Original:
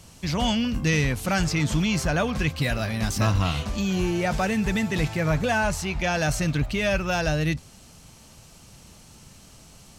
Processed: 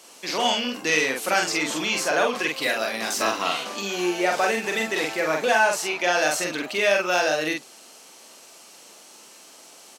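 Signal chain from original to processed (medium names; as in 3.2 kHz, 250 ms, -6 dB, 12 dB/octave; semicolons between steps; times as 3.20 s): high-pass 330 Hz 24 dB/octave; doubling 45 ms -3 dB; trim +3 dB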